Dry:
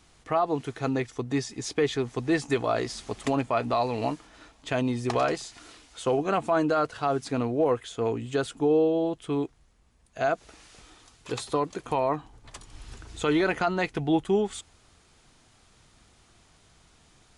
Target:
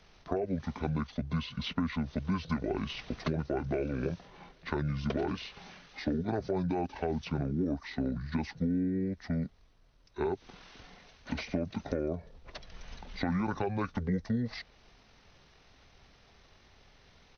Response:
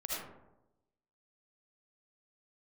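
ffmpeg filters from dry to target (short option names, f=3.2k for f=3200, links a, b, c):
-filter_complex "[0:a]asetrate=25476,aresample=44100,atempo=1.73107,acrossover=split=110|4400[a][b][c];[a]acompressor=threshold=-41dB:ratio=4[d];[b]acompressor=threshold=-30dB:ratio=4[e];[c]acompressor=threshold=-55dB:ratio=4[f];[d][e][f]amix=inputs=3:normalize=0"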